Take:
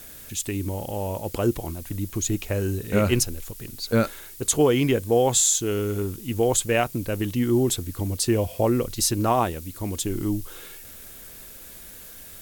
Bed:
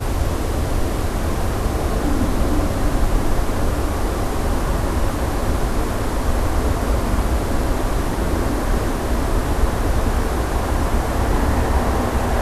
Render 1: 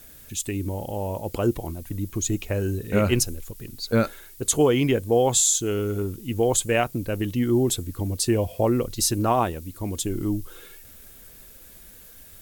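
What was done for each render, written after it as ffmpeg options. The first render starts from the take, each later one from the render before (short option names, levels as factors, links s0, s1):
-af "afftdn=nr=6:nf=-43"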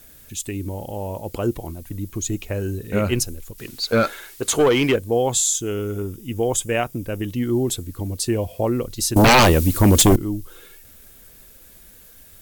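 -filter_complex "[0:a]asettb=1/sr,asplit=3[s0][s1][s2];[s0]atrim=end=3.584[s3];[s1]atrim=start=3.58:end=4.96,asetpts=PTS-STARTPTS,afade=t=in:d=0.004:c=qsin,afade=t=out:st=1.376:d=0.004:c=qsin,asplit=2[s4][s5];[s5]highpass=f=720:p=1,volume=7.08,asoftclip=type=tanh:threshold=0.422[s6];[s4][s6]amix=inputs=2:normalize=0,lowpass=f=4400:p=1,volume=0.501[s7];[s2]atrim=start=4.956[s8];[s3][s7]acrossfade=d=0.004:c1=hsin:c2=qsin[s9];[s9][s8]acrossfade=d=0.004:c1=qsin:c2=hsin,asettb=1/sr,asplit=3[s10][s11][s12];[s10]atrim=end=5.534[s13];[s11]atrim=start=5.53:end=7.29,asetpts=PTS-STARTPTS,afade=t=in:d=0.004:c=qsin,afade=t=out:st=1.756:d=0.004:c=qsin,asuperstop=centerf=4200:order=4:qfactor=6.8[s14];[s12]atrim=start=7.286[s15];[s13][s14]acrossfade=d=0.004:c1=hsin:c2=qsin[s16];[s16][s15]acrossfade=d=0.004:c1=qsin:c2=hsin,asettb=1/sr,asplit=3[s17][s18][s19];[s17]atrim=end=9.164[s20];[s18]atrim=start=9.16:end=10.16,asetpts=PTS-STARTPTS,afade=t=in:d=0.004:c=qsin,afade=t=out:st=0.996:d=0.004:c=qsin,aeval=exprs='0.376*sin(PI/2*5.62*val(0)/0.376)':c=same[s21];[s19]atrim=start=10.156[s22];[s20][s21]acrossfade=d=0.004:c1=hsin:c2=qsin[s23];[s23][s22]acrossfade=d=0.004:c1=qsin:c2=hsin"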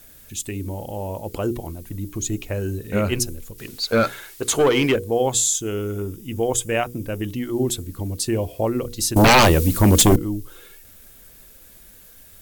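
-af "bandreject=f=60:t=h:w=6,bandreject=f=120:t=h:w=6,bandreject=f=180:t=h:w=6,bandreject=f=240:t=h:w=6,bandreject=f=300:t=h:w=6,bandreject=f=360:t=h:w=6,bandreject=f=420:t=h:w=6,bandreject=f=480:t=h:w=6"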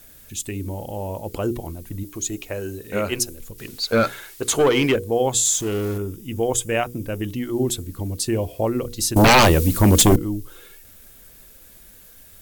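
-filter_complex "[0:a]asettb=1/sr,asplit=3[s0][s1][s2];[s0]atrim=end=2.034[s3];[s1]atrim=start=2.03:end=3.4,asetpts=PTS-STARTPTS,afade=t=in:d=0.004:c=qsin,afade=t=out:st=1.366:d=0.004:c=qsin,bass=f=250:g=-9,treble=f=4000:g=1[s4];[s2]atrim=start=3.396[s5];[s3][s4]acrossfade=d=0.004:c1=hsin:c2=qsin[s6];[s6][s5]acrossfade=d=0.004:c1=qsin:c2=hsin,asettb=1/sr,asplit=3[s7][s8][s9];[s7]atrim=end=5.454[s10];[s8]atrim=start=5.45:end=5.98,asetpts=PTS-STARTPTS,afade=t=in:d=0.004:c=qsin,afade=t=out:st=0.526:d=0.004:c=qsin,aeval=exprs='val(0)+0.5*0.0316*sgn(val(0))':c=same[s11];[s9]atrim=start=5.976[s12];[s10][s11]acrossfade=d=0.004:c1=hsin:c2=qsin[s13];[s13][s12]acrossfade=d=0.004:c1=qsin:c2=hsin"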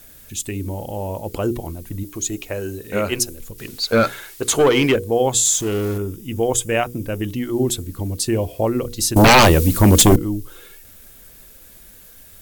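-af "volume=1.33"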